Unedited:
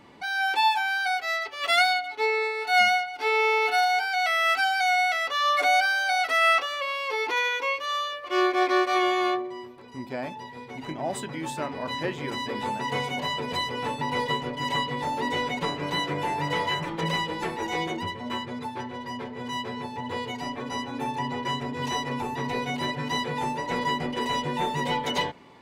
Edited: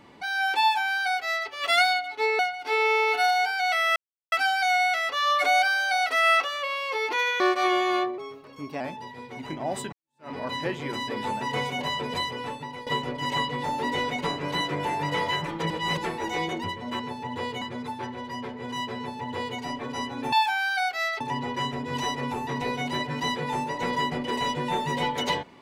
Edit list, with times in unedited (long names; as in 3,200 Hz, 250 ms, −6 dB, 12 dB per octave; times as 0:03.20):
0:00.61–0:01.49: duplicate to 0:21.09
0:02.39–0:02.93: remove
0:04.50: splice in silence 0.36 s
0:07.58–0:08.71: remove
0:09.49–0:10.19: play speed 112%
0:11.31–0:11.69: fade in exponential
0:13.55–0:14.25: fade out, to −16 dB
0:17.09–0:17.36: reverse
0:19.73–0:20.35: duplicate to 0:18.38